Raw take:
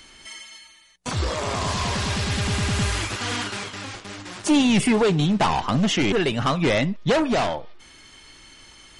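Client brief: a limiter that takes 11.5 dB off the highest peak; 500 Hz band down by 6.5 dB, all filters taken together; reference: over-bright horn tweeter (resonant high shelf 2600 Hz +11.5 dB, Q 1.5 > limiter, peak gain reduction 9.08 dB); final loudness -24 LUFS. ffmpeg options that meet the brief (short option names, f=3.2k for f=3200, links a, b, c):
-af "equalizer=f=500:t=o:g=-8,alimiter=limit=-22.5dB:level=0:latency=1,highshelf=f=2.6k:t=q:w=1.5:g=11.5,volume=4dB,alimiter=limit=-15dB:level=0:latency=1"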